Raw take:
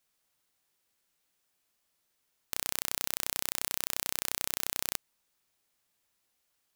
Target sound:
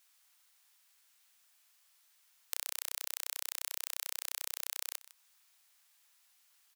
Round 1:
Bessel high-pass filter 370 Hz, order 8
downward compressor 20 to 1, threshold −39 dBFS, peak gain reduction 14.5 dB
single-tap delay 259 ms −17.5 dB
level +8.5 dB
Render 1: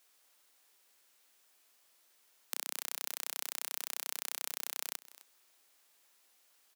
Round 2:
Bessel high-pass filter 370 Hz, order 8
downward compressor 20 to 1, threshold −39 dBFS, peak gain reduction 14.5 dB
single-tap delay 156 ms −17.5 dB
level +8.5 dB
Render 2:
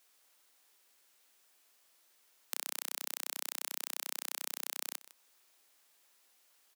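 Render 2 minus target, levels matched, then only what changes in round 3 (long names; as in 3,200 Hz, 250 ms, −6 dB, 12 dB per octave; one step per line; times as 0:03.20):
500 Hz band +10.5 dB
change: Bessel high-pass filter 1,100 Hz, order 8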